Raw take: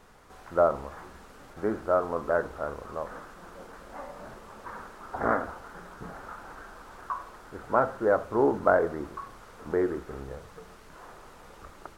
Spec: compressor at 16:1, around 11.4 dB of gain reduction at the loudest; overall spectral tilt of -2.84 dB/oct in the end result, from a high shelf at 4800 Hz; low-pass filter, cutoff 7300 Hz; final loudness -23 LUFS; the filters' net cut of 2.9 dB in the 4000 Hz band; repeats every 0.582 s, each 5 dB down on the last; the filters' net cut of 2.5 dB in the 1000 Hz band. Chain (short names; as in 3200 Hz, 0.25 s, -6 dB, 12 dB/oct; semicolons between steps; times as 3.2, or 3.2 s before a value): LPF 7300 Hz; bell 1000 Hz -3.5 dB; bell 4000 Hz -5.5 dB; high shelf 4800 Hz +4.5 dB; compressor 16:1, threshold -29 dBFS; feedback echo 0.582 s, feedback 56%, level -5 dB; gain +15 dB